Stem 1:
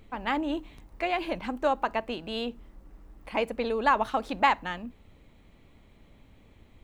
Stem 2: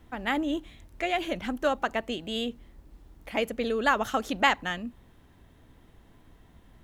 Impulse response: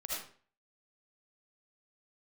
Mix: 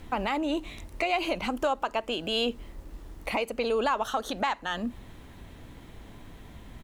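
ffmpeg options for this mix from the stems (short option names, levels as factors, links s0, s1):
-filter_complex "[0:a]lowpass=8600,crystalizer=i=3:c=0,volume=0.531[s0];[1:a]acompressor=threshold=0.0282:ratio=6,alimiter=level_in=1.88:limit=0.0631:level=0:latency=1,volume=0.531,volume=-1,adelay=0.4,volume=1.26[s1];[s0][s1]amix=inputs=2:normalize=0,acontrast=67,alimiter=limit=0.15:level=0:latency=1:release=485"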